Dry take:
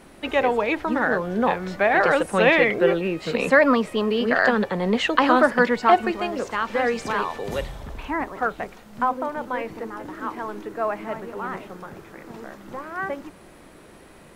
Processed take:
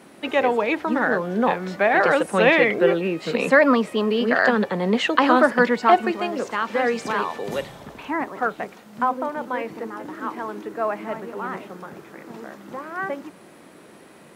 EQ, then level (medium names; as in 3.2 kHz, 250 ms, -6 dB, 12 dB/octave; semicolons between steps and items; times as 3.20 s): Chebyshev high-pass 180 Hz, order 2; +1.5 dB